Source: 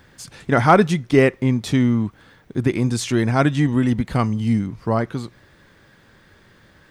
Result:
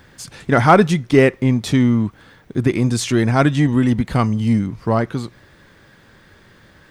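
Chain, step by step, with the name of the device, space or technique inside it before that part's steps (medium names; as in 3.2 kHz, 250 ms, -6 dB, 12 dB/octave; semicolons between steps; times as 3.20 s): parallel distortion (in parallel at -13 dB: hard clipper -19 dBFS, distortion -6 dB); on the sum: trim +1.5 dB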